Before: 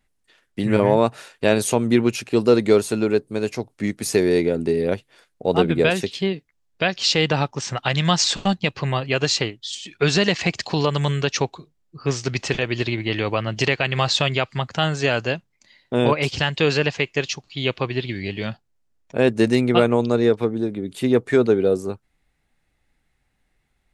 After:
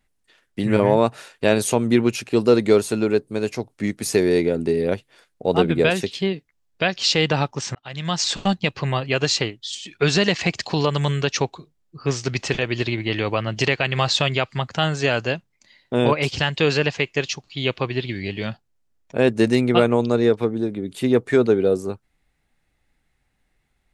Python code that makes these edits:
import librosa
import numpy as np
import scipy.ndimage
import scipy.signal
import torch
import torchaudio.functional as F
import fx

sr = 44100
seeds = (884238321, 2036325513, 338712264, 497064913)

y = fx.edit(x, sr, fx.fade_in_span(start_s=7.75, length_s=0.69), tone=tone)